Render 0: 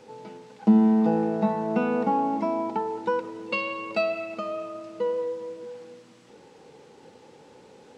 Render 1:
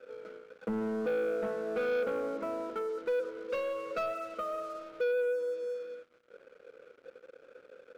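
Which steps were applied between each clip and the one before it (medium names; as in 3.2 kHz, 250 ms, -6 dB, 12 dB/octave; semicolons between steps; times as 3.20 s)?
two resonant band-passes 850 Hz, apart 1.4 oct; waveshaping leveller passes 3; trim -5 dB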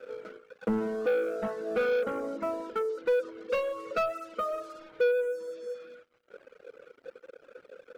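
reverb removal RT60 1.4 s; trim +6 dB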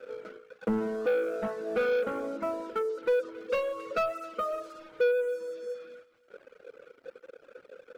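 thinning echo 271 ms, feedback 36%, high-pass 580 Hz, level -18 dB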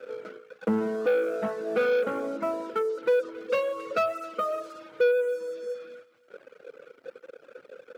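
high-pass 100 Hz 24 dB/octave; trim +3 dB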